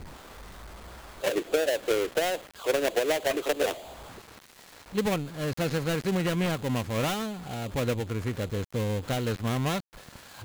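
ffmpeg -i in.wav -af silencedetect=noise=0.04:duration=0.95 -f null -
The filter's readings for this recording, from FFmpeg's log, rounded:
silence_start: 0.00
silence_end: 1.24 | silence_duration: 1.24
silence_start: 3.72
silence_end: 4.95 | silence_duration: 1.23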